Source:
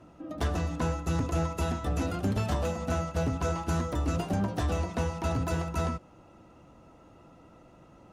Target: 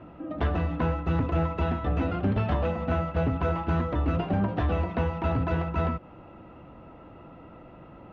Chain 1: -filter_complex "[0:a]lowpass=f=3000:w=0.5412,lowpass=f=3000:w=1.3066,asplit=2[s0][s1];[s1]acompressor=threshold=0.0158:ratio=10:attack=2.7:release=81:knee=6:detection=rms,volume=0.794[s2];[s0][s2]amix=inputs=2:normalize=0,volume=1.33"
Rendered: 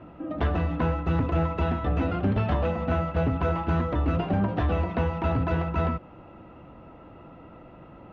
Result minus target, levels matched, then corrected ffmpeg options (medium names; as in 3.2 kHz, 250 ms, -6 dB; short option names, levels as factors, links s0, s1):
compression: peak gain reduction -10 dB
-filter_complex "[0:a]lowpass=f=3000:w=0.5412,lowpass=f=3000:w=1.3066,asplit=2[s0][s1];[s1]acompressor=threshold=0.00447:ratio=10:attack=2.7:release=81:knee=6:detection=rms,volume=0.794[s2];[s0][s2]amix=inputs=2:normalize=0,volume=1.33"